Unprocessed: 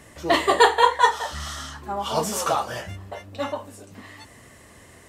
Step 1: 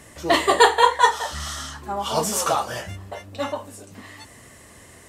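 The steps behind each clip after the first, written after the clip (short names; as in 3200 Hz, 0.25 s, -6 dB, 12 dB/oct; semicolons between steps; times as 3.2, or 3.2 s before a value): bell 9200 Hz +4 dB 1.6 oct; gain +1 dB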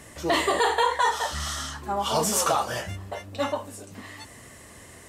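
limiter -12.5 dBFS, peak gain reduction 11 dB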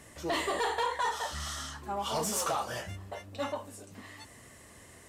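soft clip -16.5 dBFS, distortion -18 dB; gain -6.5 dB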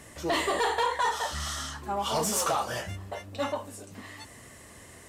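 short-mantissa float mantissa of 8-bit; gain +4 dB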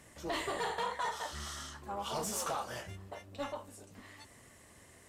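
AM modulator 290 Hz, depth 40%; gain -6.5 dB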